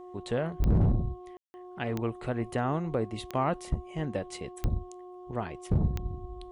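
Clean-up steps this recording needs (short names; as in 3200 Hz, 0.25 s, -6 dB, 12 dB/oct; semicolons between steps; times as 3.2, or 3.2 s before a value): clip repair -17.5 dBFS; de-click; de-hum 361.8 Hz, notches 3; room tone fill 1.37–1.54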